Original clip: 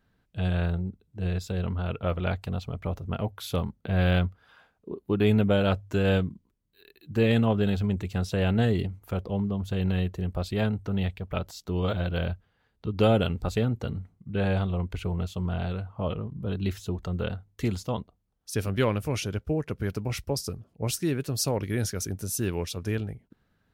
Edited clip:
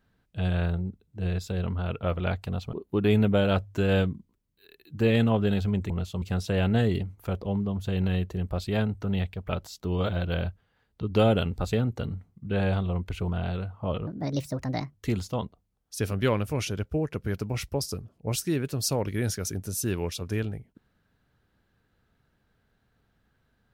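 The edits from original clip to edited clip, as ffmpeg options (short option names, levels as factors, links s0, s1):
-filter_complex "[0:a]asplit=7[s0][s1][s2][s3][s4][s5][s6];[s0]atrim=end=2.732[s7];[s1]atrim=start=4.888:end=8.062[s8];[s2]atrim=start=15.118:end=15.442[s9];[s3]atrim=start=8.058:end=15.122[s10];[s4]atrim=start=15.438:end=16.234[s11];[s5]atrim=start=16.23:end=17.5,asetpts=PTS-STARTPTS,asetrate=63945,aresample=44100[s12];[s6]atrim=start=17.496[s13];[s7][s8]acrossfade=d=0.004:c1=hsin:c2=hsin[s14];[s14][s9]acrossfade=d=0.004:c1=hsin:c2=hsin[s15];[s15][s10]acrossfade=d=0.004:c1=hsin:c2=hsin[s16];[s16][s11]acrossfade=d=0.004:c1=hsin:c2=hsin[s17];[s17][s12]acrossfade=d=0.004:c1=hsin:c2=hsin[s18];[s18][s13]acrossfade=d=0.004:c1=hsin:c2=hsin"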